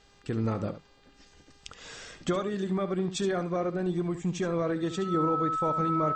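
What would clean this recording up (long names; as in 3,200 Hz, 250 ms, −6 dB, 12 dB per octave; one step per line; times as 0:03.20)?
hum removal 402.2 Hz, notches 12
notch filter 1,300 Hz, Q 30
echo removal 71 ms −11.5 dB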